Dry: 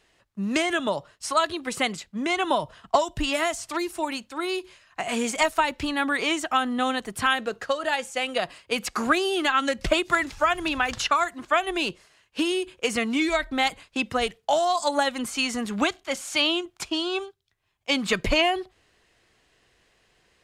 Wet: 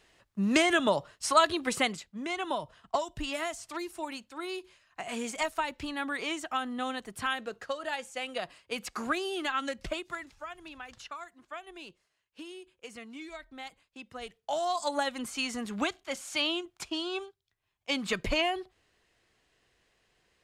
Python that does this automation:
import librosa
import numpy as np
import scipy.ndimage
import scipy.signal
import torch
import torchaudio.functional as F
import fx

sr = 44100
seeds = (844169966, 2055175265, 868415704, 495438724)

y = fx.gain(x, sr, db=fx.line((1.69, 0.0), (2.15, -9.0), (9.66, -9.0), (10.42, -20.0), (14.05, -20.0), (14.67, -7.0)))